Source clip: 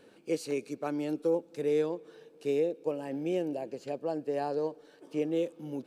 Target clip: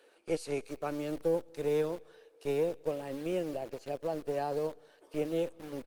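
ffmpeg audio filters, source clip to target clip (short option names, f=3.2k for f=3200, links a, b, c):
-filter_complex "[0:a]acrossover=split=400[a][b];[a]acrusher=bits=5:dc=4:mix=0:aa=0.000001[c];[c][b]amix=inputs=2:normalize=0,asplit=2[d][e];[e]adelay=209.9,volume=-29dB,highshelf=f=4k:g=-4.72[f];[d][f]amix=inputs=2:normalize=0" -ar 48000 -c:a libopus -b:a 32k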